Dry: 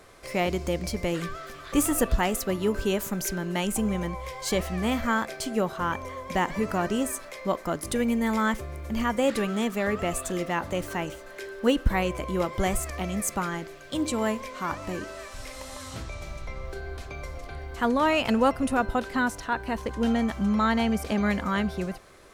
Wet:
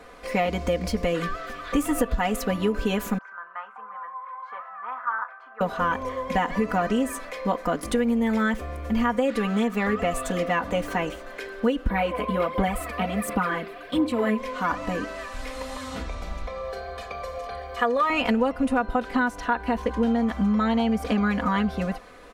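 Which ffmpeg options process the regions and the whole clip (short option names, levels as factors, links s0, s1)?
-filter_complex "[0:a]asettb=1/sr,asplit=3[s0][s1][s2];[s0]atrim=end=3.184[s3];[s1]atrim=start=3.18:end=5.61,asetpts=PTS-STARTPTS,afade=t=in:d=0.004:c=qsin,afade=t=out:st=2.426:d=0.004:c=qsin,asuperpass=centerf=1200:order=4:qfactor=2.4,asplit=2[s4][s5];[s5]adelay=36,volume=0.224[s6];[s4][s6]amix=inputs=2:normalize=0,atrim=end_sample=107163[s7];[s2]atrim=start=5.606[s8];[s3][s7]acrossfade=d=0.004:c1=hsin:c2=qsin[s9];[s9][s8]acrossfade=d=0.004:c1=qsin:c2=hsin,asettb=1/sr,asplit=3[s10][s11][s12];[s10]atrim=end=11.894[s13];[s11]atrim=start=11.89:end=14.38,asetpts=PTS-STARTPTS,afade=t=in:d=0.004:c=qsin,afade=t=out:st=2.486:d=0.004:c=qsin,highpass=f=110:p=1,equalizer=f=6500:t=o:w=0.63:g=-13.5,aphaser=in_gain=1:out_gain=1:delay=4.9:decay=0.53:speed=1.4:type=sinusoidal[s14];[s12]atrim=start=14.376[s15];[s13][s14]acrossfade=d=0.004:c1=hsin:c2=qsin[s16];[s16][s15]acrossfade=d=0.004:c1=qsin:c2=hsin,asettb=1/sr,asplit=3[s17][s18][s19];[s17]atrim=end=16.474[s20];[s18]atrim=start=16.47:end=18.1,asetpts=PTS-STARTPTS,afade=t=in:d=0.004:c=qsin,afade=t=out:st=1.626:d=0.004:c=qsin,highpass=f=300:p=1,aecho=1:1:1.7:0.7,atrim=end_sample=71883[s21];[s19]atrim=start=18.096[s22];[s20][s21]acrossfade=d=0.004:c1=hsin:c2=qsin[s23];[s23][s22]acrossfade=d=0.004:c1=qsin:c2=hsin,bass=f=250:g=-3,treble=f=4000:g=-10,aecho=1:1:4.1:0.87,acompressor=threshold=0.0631:ratio=6,volume=1.68"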